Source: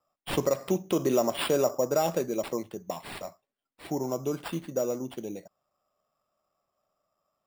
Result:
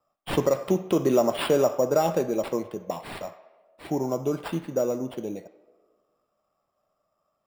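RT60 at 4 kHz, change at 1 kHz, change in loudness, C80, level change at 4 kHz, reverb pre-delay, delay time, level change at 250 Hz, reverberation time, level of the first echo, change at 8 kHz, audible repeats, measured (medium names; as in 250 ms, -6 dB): 0.85 s, +3.5 dB, +3.5 dB, 14.5 dB, 0.0 dB, 5 ms, no echo, +4.0 dB, 1.4 s, no echo, -1.5 dB, no echo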